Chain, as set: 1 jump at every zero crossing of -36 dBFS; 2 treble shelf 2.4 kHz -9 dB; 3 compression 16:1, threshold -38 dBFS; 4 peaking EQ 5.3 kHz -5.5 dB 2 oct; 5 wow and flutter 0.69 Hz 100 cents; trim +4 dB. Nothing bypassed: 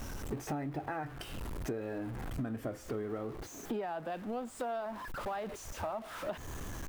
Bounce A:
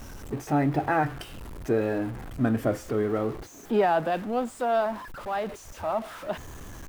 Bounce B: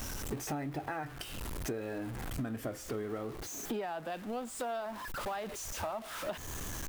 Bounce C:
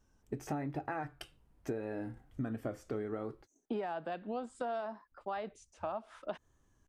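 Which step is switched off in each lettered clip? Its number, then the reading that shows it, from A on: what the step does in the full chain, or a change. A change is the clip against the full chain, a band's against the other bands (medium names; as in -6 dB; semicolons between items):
3, mean gain reduction 7.0 dB; 2, 8 kHz band +7.5 dB; 1, distortion -12 dB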